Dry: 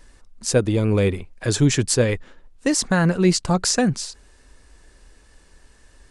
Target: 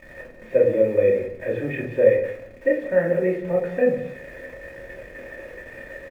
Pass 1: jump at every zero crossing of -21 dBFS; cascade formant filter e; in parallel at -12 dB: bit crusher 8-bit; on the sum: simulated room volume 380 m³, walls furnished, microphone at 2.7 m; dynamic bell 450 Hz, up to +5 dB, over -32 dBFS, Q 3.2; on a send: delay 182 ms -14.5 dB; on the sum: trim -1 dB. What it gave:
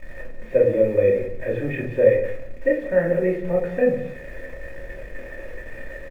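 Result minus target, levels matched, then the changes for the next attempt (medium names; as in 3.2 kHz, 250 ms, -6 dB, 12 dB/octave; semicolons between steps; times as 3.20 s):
125 Hz band +2.5 dB
add after dynamic bell: high-pass 130 Hz 6 dB/octave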